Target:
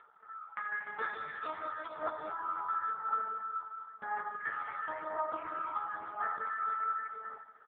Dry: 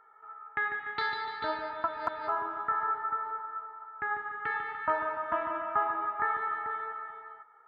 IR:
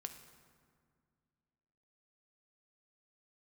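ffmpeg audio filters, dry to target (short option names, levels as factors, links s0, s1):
-filter_complex "[0:a]asettb=1/sr,asplit=3[s0][s1][s2];[s0]atrim=end=2.934[s3];[s1]atrim=start=2.93:end=4,asetpts=PTS-STARTPTS,afade=t=in:d=0.004:c=qsin,afade=t=out:st=1.066:d=0.004:c=qsin,lowpass=1600[s4];[s2]atrim=start=3.996[s5];[s3][s4]acrossfade=d=0.004:c1=hsin:c2=qsin[s6];[s6][s5]acrossfade=d=0.004:c1=qsin:c2=hsin,lowshelf=f=370:g=-3.5,asplit=3[s7][s8][s9];[s7]afade=t=out:st=6.22:d=0.02[s10];[s8]bandreject=f=410:w=12,afade=t=in:st=6.22:d=0.02,afade=t=out:st=6.77:d=0.02[s11];[s9]afade=t=in:st=6.77:d=0.02[s12];[s10][s11][s12]amix=inputs=3:normalize=0,acompressor=threshold=0.0224:ratio=4,aeval=exprs='0.1*(cos(1*acos(clip(val(0)/0.1,-1,1)))-cos(1*PI/2))+0.00631*(cos(5*acos(clip(val(0)/0.1,-1,1)))-cos(5*PI/2))':c=same,asplit=3[s13][s14][s15];[s13]afade=t=out:st=1.37:d=0.02[s16];[s14]aeval=exprs='0.0376*(abs(mod(val(0)/0.0376+3,4)-2)-1)':c=same,afade=t=in:st=1.37:d=0.02,afade=t=out:st=1.99:d=0.02[s17];[s15]afade=t=in:st=1.99:d=0.02[s18];[s16][s17][s18]amix=inputs=3:normalize=0,aphaser=in_gain=1:out_gain=1:delay=1:decay=0.51:speed=0.96:type=triangular,asplit=2[s19][s20];[s20]adelay=13,volume=0.447[s21];[s19][s21]amix=inputs=2:normalize=0[s22];[1:a]atrim=start_sample=2205,afade=t=out:st=0.41:d=0.01,atrim=end_sample=18522[s23];[s22][s23]afir=irnorm=-1:irlink=0,volume=1.19" -ar 8000 -c:a libopencore_amrnb -b:a 4750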